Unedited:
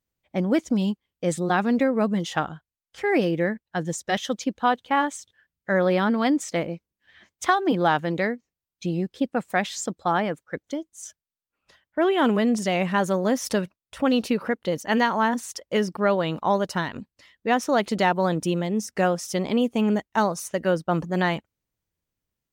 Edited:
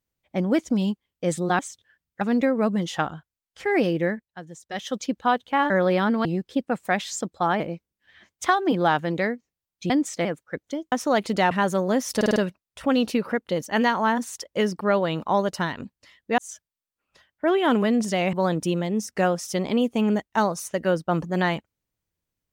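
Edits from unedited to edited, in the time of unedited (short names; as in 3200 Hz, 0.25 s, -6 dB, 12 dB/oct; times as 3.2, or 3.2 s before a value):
3.44–4.39 dip -13.5 dB, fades 0.36 s
5.08–5.7 move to 1.59
6.25–6.6 swap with 8.9–10.25
10.92–12.87 swap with 17.54–18.13
13.52 stutter 0.05 s, 5 plays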